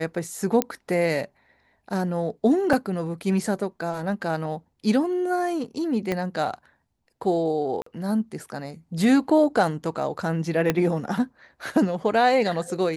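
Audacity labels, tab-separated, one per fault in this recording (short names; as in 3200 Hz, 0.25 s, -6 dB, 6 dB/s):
0.620000	0.620000	pop -6 dBFS
2.730000	2.730000	gap 3.6 ms
6.120000	6.120000	pop -13 dBFS
7.820000	7.860000	gap 44 ms
10.700000	10.700000	pop -7 dBFS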